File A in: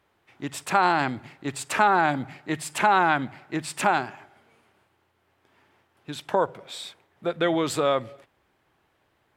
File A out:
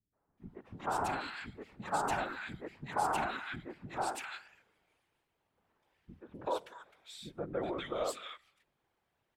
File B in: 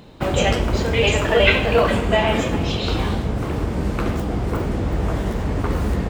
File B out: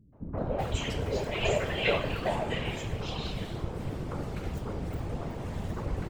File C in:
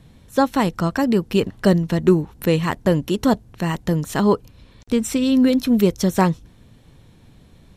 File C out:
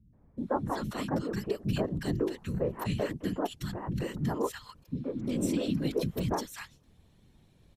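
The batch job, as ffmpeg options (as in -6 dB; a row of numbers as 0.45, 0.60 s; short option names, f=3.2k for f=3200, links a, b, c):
-filter_complex "[0:a]afftfilt=real='hypot(re,im)*cos(2*PI*random(0))':imag='hypot(re,im)*sin(2*PI*random(1))':win_size=512:overlap=0.75,acrossover=split=270|1500[a][b][c];[b]adelay=130[d];[c]adelay=380[e];[a][d][e]amix=inputs=3:normalize=0,volume=-5.5dB"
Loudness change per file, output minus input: -13.0, -12.5, -13.5 LU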